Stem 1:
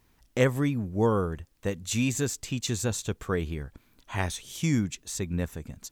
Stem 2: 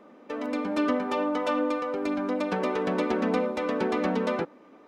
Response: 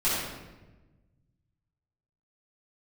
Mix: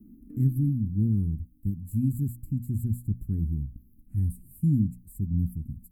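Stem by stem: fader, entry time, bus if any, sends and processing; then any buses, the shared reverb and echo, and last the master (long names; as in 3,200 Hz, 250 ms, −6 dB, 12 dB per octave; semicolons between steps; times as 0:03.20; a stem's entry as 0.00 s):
−1.0 dB, 0.00 s, no send, mains-hum notches 60/120/180/240 Hz
−2.0 dB, 0.00 s, no send, compressor whose output falls as the input rises −33 dBFS, ratio −0.5; automatic ducking −23 dB, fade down 1.80 s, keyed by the first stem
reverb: not used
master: inverse Chebyshev band-stop filter 490–6,500 Hz, stop band 40 dB; low-shelf EQ 210 Hz +9 dB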